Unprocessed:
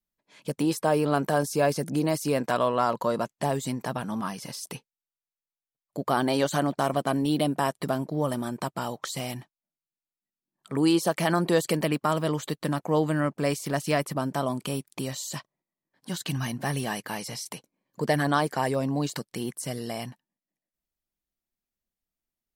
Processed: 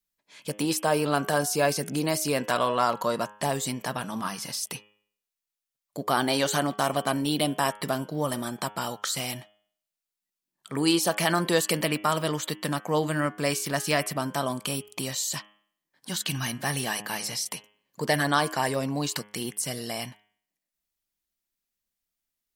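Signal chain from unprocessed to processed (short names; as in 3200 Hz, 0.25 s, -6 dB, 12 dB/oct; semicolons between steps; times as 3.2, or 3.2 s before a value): tilt shelf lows -4.5 dB, about 1200 Hz; de-hum 104 Hz, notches 33; gain +2 dB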